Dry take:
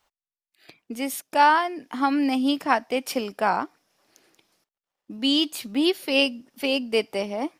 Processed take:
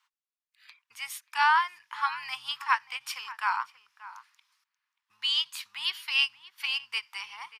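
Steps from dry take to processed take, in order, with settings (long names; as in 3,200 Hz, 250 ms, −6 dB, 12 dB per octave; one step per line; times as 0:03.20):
sub-octave generator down 1 octave, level −6 dB
elliptic high-pass filter 980 Hz, stop band 40 dB
high-shelf EQ 6,700 Hz −9 dB
slap from a distant wall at 100 metres, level −16 dB
every ending faded ahead of time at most 530 dB per second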